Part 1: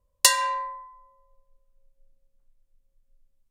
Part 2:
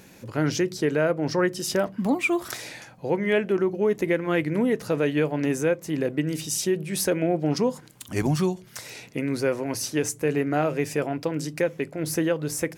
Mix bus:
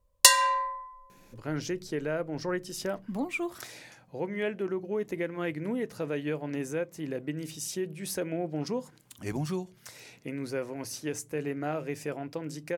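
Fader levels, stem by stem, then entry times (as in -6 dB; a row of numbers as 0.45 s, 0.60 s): +1.0 dB, -9.0 dB; 0.00 s, 1.10 s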